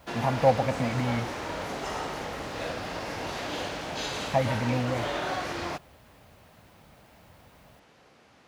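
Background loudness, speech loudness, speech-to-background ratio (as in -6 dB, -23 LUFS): -33.5 LUFS, -28.5 LUFS, 5.0 dB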